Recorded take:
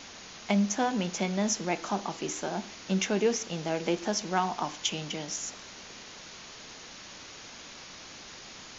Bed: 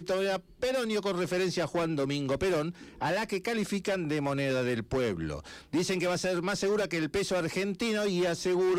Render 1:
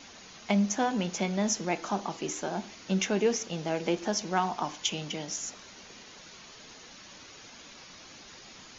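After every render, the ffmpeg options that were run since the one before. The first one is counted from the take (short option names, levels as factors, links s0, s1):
-af "afftdn=nr=6:nf=-47"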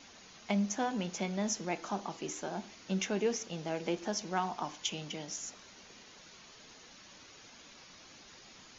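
-af "volume=0.531"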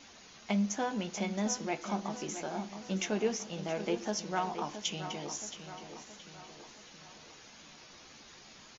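-filter_complex "[0:a]asplit=2[s0][s1];[s1]adelay=14,volume=0.299[s2];[s0][s2]amix=inputs=2:normalize=0,asplit=2[s3][s4];[s4]adelay=672,lowpass=f=4200:p=1,volume=0.316,asplit=2[s5][s6];[s6]adelay=672,lowpass=f=4200:p=1,volume=0.53,asplit=2[s7][s8];[s8]adelay=672,lowpass=f=4200:p=1,volume=0.53,asplit=2[s9][s10];[s10]adelay=672,lowpass=f=4200:p=1,volume=0.53,asplit=2[s11][s12];[s12]adelay=672,lowpass=f=4200:p=1,volume=0.53,asplit=2[s13][s14];[s14]adelay=672,lowpass=f=4200:p=1,volume=0.53[s15];[s3][s5][s7][s9][s11][s13][s15]amix=inputs=7:normalize=0"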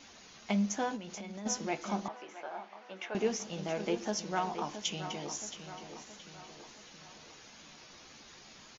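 -filter_complex "[0:a]asplit=3[s0][s1][s2];[s0]afade=t=out:st=0.95:d=0.02[s3];[s1]acompressor=threshold=0.0112:ratio=12:attack=3.2:release=140:knee=1:detection=peak,afade=t=in:st=0.95:d=0.02,afade=t=out:st=1.45:d=0.02[s4];[s2]afade=t=in:st=1.45:d=0.02[s5];[s3][s4][s5]amix=inputs=3:normalize=0,asettb=1/sr,asplit=3[s6][s7][s8];[s6]atrim=end=2.084[s9];[s7]atrim=start=2.08:end=3.15,asetpts=PTS-STARTPTS,afade=t=in:d=0.004:c=qsin,afade=t=out:st=1.066:d=0.004:c=qsin,highpass=650,lowpass=2200[s10];[s8]atrim=start=3.146[s11];[s9][s10]acrossfade=d=0.004:c1=hsin:c2=qsin[s12];[s12][s11]acrossfade=d=0.004:c1=qsin:c2=hsin"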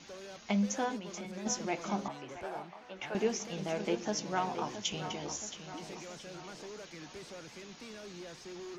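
-filter_complex "[1:a]volume=0.112[s0];[0:a][s0]amix=inputs=2:normalize=0"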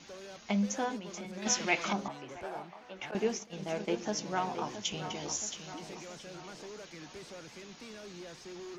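-filter_complex "[0:a]asettb=1/sr,asplit=3[s0][s1][s2];[s0]atrim=end=1.424[s3];[s1]atrim=start=1.42:end=1.93,asetpts=PTS-STARTPTS,afade=t=in:d=0.004:c=qsin,afade=t=out:st=0.506:d=0.004:c=qsin,equalizer=f=2600:t=o:w=2.2:g=12.5[s4];[s2]atrim=start=1.926[s5];[s3][s4]acrossfade=d=0.004:c1=hsin:c2=qsin[s6];[s6][s5]acrossfade=d=0.004:c1=qsin:c2=hsin,asettb=1/sr,asplit=3[s7][s8][s9];[s7]atrim=end=3.114[s10];[s8]atrim=start=3.11:end=3.98,asetpts=PTS-STARTPTS,afade=t=in:d=0.004:c=qsin,afade=t=out:st=0.866:d=0.004:c=qsin,agate=range=0.0224:threshold=0.0158:ratio=3:release=100:detection=peak[s11];[s9]atrim=start=3.976[s12];[s10][s11]acrossfade=d=0.004:c1=hsin:c2=qsin[s13];[s13][s12]acrossfade=d=0.004:c1=qsin:c2=hsin,asettb=1/sr,asplit=3[s14][s15][s16];[s14]atrim=end=5.154[s17];[s15]atrim=start=5.15:end=5.74,asetpts=PTS-STARTPTS,afade=t=in:d=0.004:c=qsin,afade=t=out:st=0.586:d=0.004:c=qsin,highshelf=f=3600:g=6.5[s18];[s16]atrim=start=5.736[s19];[s17][s18]acrossfade=d=0.004:c1=hsin:c2=qsin[s20];[s20][s19]acrossfade=d=0.004:c1=qsin:c2=hsin"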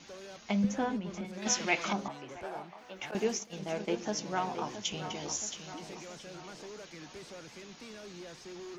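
-filter_complex "[0:a]asettb=1/sr,asplit=3[s0][s1][s2];[s0]atrim=end=0.644[s3];[s1]atrim=start=0.64:end=1.25,asetpts=PTS-STARTPTS,afade=t=in:d=0.004:c=qsin,afade=t=out:st=0.606:d=0.004:c=qsin,bass=f=250:g=10,treble=f=4000:g=-8[s4];[s2]atrim=start=1.246[s5];[s3][s4]acrossfade=d=0.004:c1=hsin:c2=qsin[s6];[s6][s5]acrossfade=d=0.004:c1=qsin:c2=hsin,asettb=1/sr,asplit=3[s7][s8][s9];[s7]atrim=end=2.784[s10];[s8]atrim=start=2.78:end=3.59,asetpts=PTS-STARTPTS,afade=t=in:d=0.004:c=qsin,afade=t=out:st=0.806:d=0.004:c=qsin,highshelf=f=7500:g=11[s11];[s9]atrim=start=3.586[s12];[s10][s11]acrossfade=d=0.004:c1=hsin:c2=qsin[s13];[s13][s12]acrossfade=d=0.004:c1=qsin:c2=hsin"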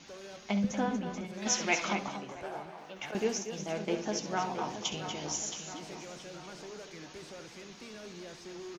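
-af "aecho=1:1:67.06|236.2:0.251|0.316"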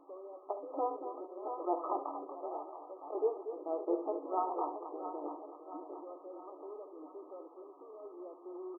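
-af "afftfilt=real='re*between(b*sr/4096,270,1300)':imag='im*between(b*sr/4096,270,1300)':win_size=4096:overlap=0.75"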